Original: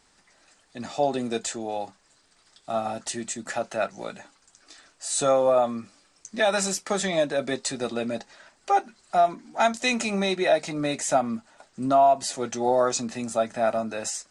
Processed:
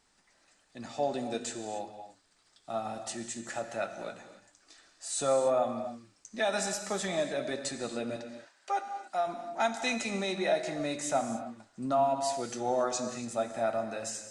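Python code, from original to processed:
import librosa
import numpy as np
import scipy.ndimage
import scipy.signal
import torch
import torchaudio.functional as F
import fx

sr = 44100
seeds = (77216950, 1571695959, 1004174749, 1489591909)

y = fx.highpass(x, sr, hz=620.0, slope=6, at=(8.16, 9.27))
y = fx.rev_gated(y, sr, seeds[0], gate_ms=310, shape='flat', drr_db=7.0)
y = y * 10.0 ** (-7.5 / 20.0)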